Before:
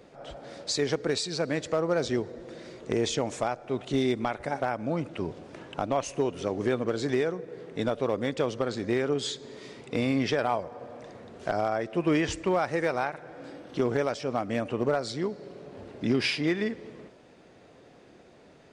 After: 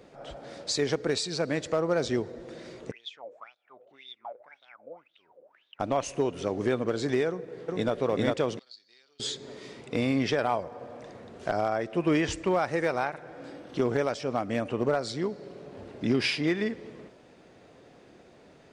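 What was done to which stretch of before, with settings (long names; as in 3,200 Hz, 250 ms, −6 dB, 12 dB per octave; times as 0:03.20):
0:02.91–0:05.80: LFO wah 1.9 Hz 490–3,700 Hz, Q 15
0:07.28–0:07.93: delay throw 400 ms, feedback 40%, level −0.5 dB
0:08.59–0:09.20: resonant band-pass 4,500 Hz, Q 12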